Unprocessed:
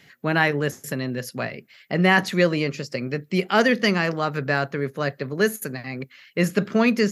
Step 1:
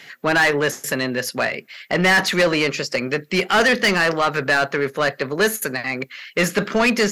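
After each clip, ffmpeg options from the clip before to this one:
-filter_complex "[0:a]asplit=2[a][b];[b]highpass=f=720:p=1,volume=23dB,asoftclip=type=tanh:threshold=-3dB[c];[a][c]amix=inputs=2:normalize=0,lowpass=f=7k:p=1,volume=-6dB,volume=-4.5dB"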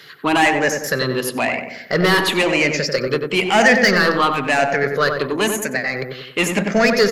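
-filter_complex "[0:a]afftfilt=real='re*pow(10,11/40*sin(2*PI*(0.6*log(max(b,1)*sr/1024/100)/log(2)-(-0.99)*(pts-256)/sr)))':imag='im*pow(10,11/40*sin(2*PI*(0.6*log(max(b,1)*sr/1024/100)/log(2)-(-0.99)*(pts-256)/sr)))':win_size=1024:overlap=0.75,asplit=2[a][b];[b]adelay=93,lowpass=f=1.4k:p=1,volume=-4dB,asplit=2[c][d];[d]adelay=93,lowpass=f=1.4k:p=1,volume=0.51,asplit=2[e][f];[f]adelay=93,lowpass=f=1.4k:p=1,volume=0.51,asplit=2[g][h];[h]adelay=93,lowpass=f=1.4k:p=1,volume=0.51,asplit=2[i][j];[j]adelay=93,lowpass=f=1.4k:p=1,volume=0.51,asplit=2[k][l];[l]adelay=93,lowpass=f=1.4k:p=1,volume=0.51,asplit=2[m][n];[n]adelay=93,lowpass=f=1.4k:p=1,volume=0.51[o];[c][e][g][i][k][m][o]amix=inputs=7:normalize=0[p];[a][p]amix=inputs=2:normalize=0"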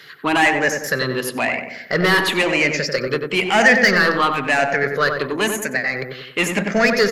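-af "equalizer=f=1.8k:w=1.5:g=3.5,volume=-2dB"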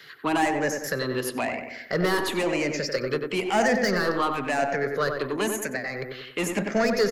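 -filter_complex "[0:a]acrossover=split=270|1200|4700[a][b][c][d];[a]aecho=1:1:96:0.562[e];[c]acompressor=threshold=-29dB:ratio=6[f];[e][b][f][d]amix=inputs=4:normalize=0,volume=-5dB"

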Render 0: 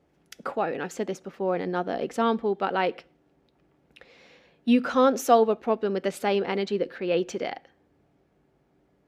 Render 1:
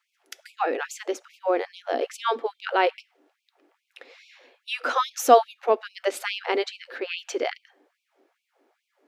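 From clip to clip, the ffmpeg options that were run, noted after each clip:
-af "afftfilt=real='re*gte(b*sr/1024,230*pow(2300/230,0.5+0.5*sin(2*PI*2.4*pts/sr)))':imag='im*gte(b*sr/1024,230*pow(2300/230,0.5+0.5*sin(2*PI*2.4*pts/sr)))':win_size=1024:overlap=0.75,volume=4.5dB"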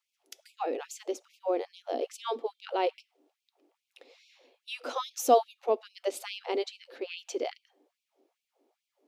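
-af "equalizer=f=1.6k:t=o:w=1.1:g=-14,volume=-4dB"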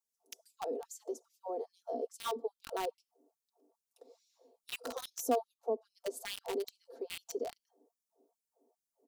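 -filter_complex "[0:a]aecho=1:1:4.4:0.75,acrossover=split=250[a][b];[b]acompressor=threshold=-36dB:ratio=2[c];[a][c]amix=inputs=2:normalize=0,acrossover=split=610|920|5700[d][e][f][g];[f]acrusher=bits=5:mix=0:aa=0.000001[h];[d][e][h][g]amix=inputs=4:normalize=0,volume=-2.5dB"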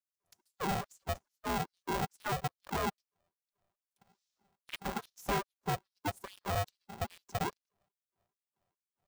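-af "asoftclip=type=hard:threshold=-34dB,afwtdn=0.00562,aeval=exprs='val(0)*sgn(sin(2*PI*300*n/s))':c=same,volume=5.5dB"

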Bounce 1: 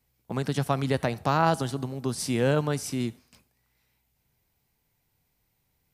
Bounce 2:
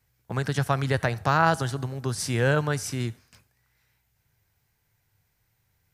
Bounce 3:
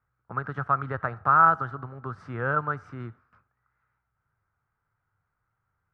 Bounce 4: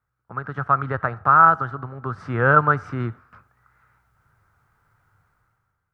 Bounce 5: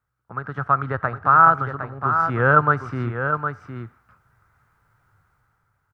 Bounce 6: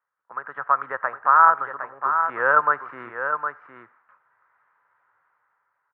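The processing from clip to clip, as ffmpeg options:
-af "equalizer=f=100:t=o:w=0.67:g=9,equalizer=f=250:t=o:w=0.67:g=-5,equalizer=f=1.6k:t=o:w=0.67:g=8,equalizer=f=6.3k:t=o:w=0.67:g=3"
-af "lowpass=f=1.3k:t=q:w=8.1,volume=-8.5dB"
-af "dynaudnorm=f=180:g=7:m=16dB,volume=-1dB"
-af "aecho=1:1:761:0.422"
-af "highpass=500,equalizer=f=540:t=q:w=4:g=5,equalizer=f=1k:t=q:w=4:g=10,equalizer=f=1.8k:t=q:w=4:g=8,lowpass=f=2.8k:w=0.5412,lowpass=f=2.8k:w=1.3066,volume=-5dB"

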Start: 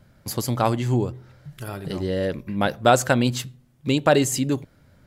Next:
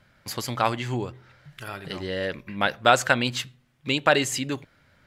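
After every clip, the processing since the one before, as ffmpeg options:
-af "equalizer=f=2.2k:w=0.41:g=13.5,volume=-8.5dB"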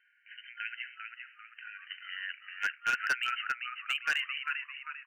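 -filter_complex "[0:a]afftfilt=real='re*between(b*sr/4096,1400,3100)':imag='im*between(b*sr/4096,1400,3100)':win_size=4096:overlap=0.75,asplit=6[a][b][c][d][e][f];[b]adelay=396,afreqshift=-94,volume=-6dB[g];[c]adelay=792,afreqshift=-188,volume=-14.2dB[h];[d]adelay=1188,afreqshift=-282,volume=-22.4dB[i];[e]adelay=1584,afreqshift=-376,volume=-30.5dB[j];[f]adelay=1980,afreqshift=-470,volume=-38.7dB[k];[a][g][h][i][j][k]amix=inputs=6:normalize=0,asoftclip=type=hard:threshold=-19dB,volume=-4dB"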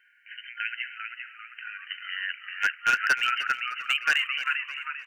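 -af "aecho=1:1:305|610|915|1220:0.168|0.0705|0.0296|0.0124,volume=7dB"

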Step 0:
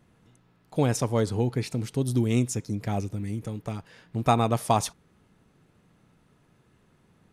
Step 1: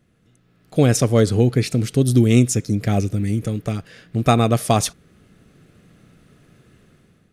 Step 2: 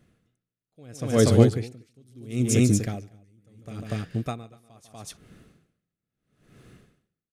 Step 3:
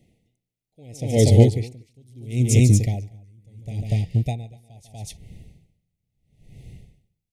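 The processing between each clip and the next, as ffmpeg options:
-af "equalizer=f=920:t=o:w=0.38:g=-14.5,dynaudnorm=f=240:g=5:m=11dB"
-af "aecho=1:1:147|241:0.224|0.501,aeval=exprs='val(0)*pow(10,-39*(0.5-0.5*cos(2*PI*0.75*n/s))/20)':c=same"
-af "asubboost=boost=7:cutoff=110,asuperstop=centerf=1300:order=20:qfactor=1.3,volume=2dB"

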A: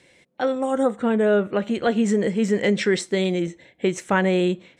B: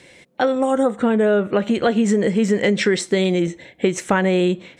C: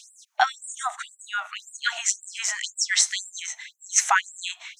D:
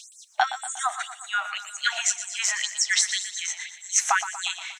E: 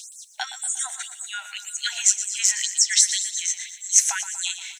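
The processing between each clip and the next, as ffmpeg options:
-af "acompressor=threshold=-24dB:ratio=3,volume=8.5dB"
-af "equalizer=f=6.3k:w=2.8:g=11.5,afftfilt=real='re*gte(b*sr/1024,610*pow(7400/610,0.5+0.5*sin(2*PI*1.9*pts/sr)))':imag='im*gte(b*sr/1024,610*pow(7400/610,0.5+0.5*sin(2*PI*1.9*pts/sr)))':win_size=1024:overlap=0.75,volume=3dB"
-af "acompressor=threshold=-23dB:ratio=2.5,aecho=1:1:119|238|357|476|595|714:0.251|0.146|0.0845|0.049|0.0284|0.0165,volume=3dB"
-af "asuperstop=centerf=1200:order=4:qfactor=4.4,aderivative,volume=7dB"

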